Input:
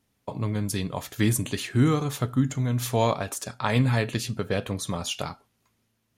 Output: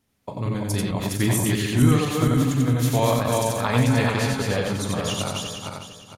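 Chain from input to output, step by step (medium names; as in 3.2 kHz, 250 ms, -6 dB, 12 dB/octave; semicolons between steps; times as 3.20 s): backward echo that repeats 228 ms, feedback 54%, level -2 dB; loudspeakers at several distances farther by 14 m -12 dB, 31 m -3 dB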